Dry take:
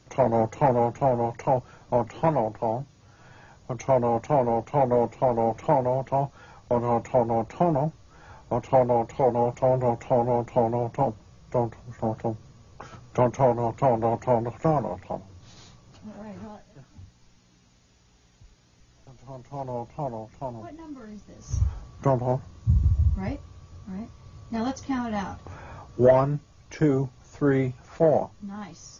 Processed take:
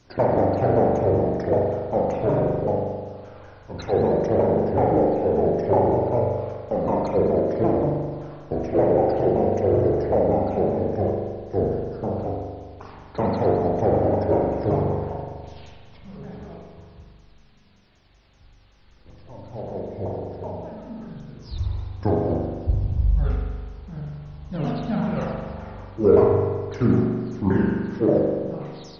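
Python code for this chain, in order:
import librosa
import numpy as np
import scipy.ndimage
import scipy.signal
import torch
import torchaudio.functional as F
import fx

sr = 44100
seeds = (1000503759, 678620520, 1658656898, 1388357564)

y = fx.pitch_ramps(x, sr, semitones=-8.5, every_ms=191)
y = fx.rev_spring(y, sr, rt60_s=1.6, pass_ms=(41,), chirp_ms=70, drr_db=-2.5)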